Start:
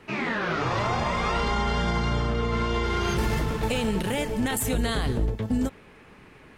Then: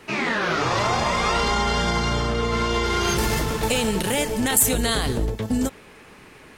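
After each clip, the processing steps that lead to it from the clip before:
bass and treble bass −4 dB, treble +8 dB
level +4.5 dB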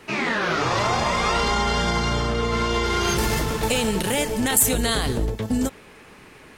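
no processing that can be heard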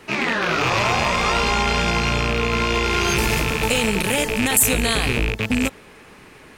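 loose part that buzzes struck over −30 dBFS, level −12 dBFS
level +1.5 dB

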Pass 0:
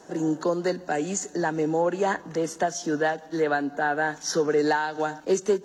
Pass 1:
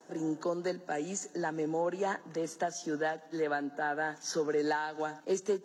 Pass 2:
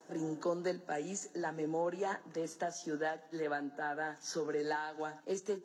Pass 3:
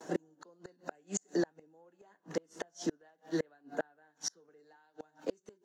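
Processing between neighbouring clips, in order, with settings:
noise gate with hold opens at −43 dBFS; high-pass filter 130 Hz; level −8 dB
flanger 0.55 Hz, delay 5.9 ms, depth 6.6 ms, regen −71%; speech leveller 2 s
gate with flip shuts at −31 dBFS, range −36 dB; level +9.5 dB

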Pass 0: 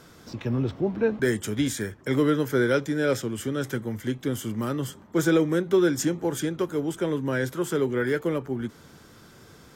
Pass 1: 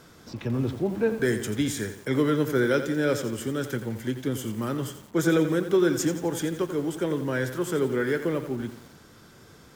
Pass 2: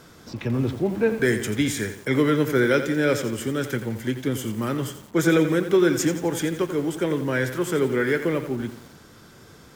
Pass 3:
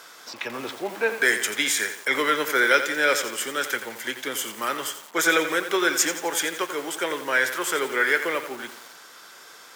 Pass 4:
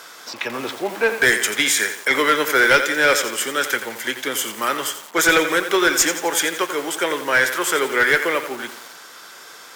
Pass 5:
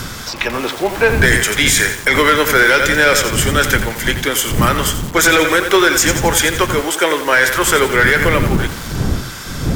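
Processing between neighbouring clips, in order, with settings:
feedback echo at a low word length 87 ms, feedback 55%, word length 7 bits, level −10 dB; level −1 dB
dynamic equaliser 2,200 Hz, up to +6 dB, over −50 dBFS, Q 2.5; level +3 dB
high-pass filter 840 Hz 12 dB per octave; level +7 dB
asymmetric clip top −16 dBFS; level +5.5 dB
wind on the microphone 170 Hz −28 dBFS; boost into a limiter +8 dB; one half of a high-frequency compander encoder only; level −1 dB

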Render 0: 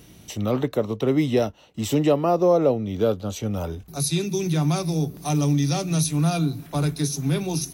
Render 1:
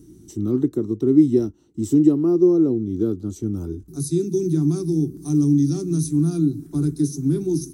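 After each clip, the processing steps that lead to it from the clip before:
drawn EQ curve 200 Hz 0 dB, 350 Hz +11 dB, 540 Hz −21 dB, 1,400 Hz −13 dB, 2,600 Hz −24 dB, 5,800 Hz −7 dB, 8,700 Hz −1 dB, 12,000 Hz −10 dB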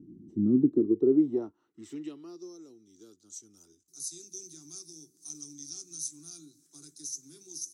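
band-pass filter sweep 220 Hz → 6,400 Hz, 0:00.62–0:02.57
level +1.5 dB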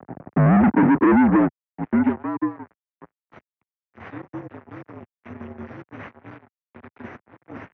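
fuzz pedal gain 39 dB, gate −46 dBFS
single-sideband voice off tune −55 Hz 150–2,100 Hz

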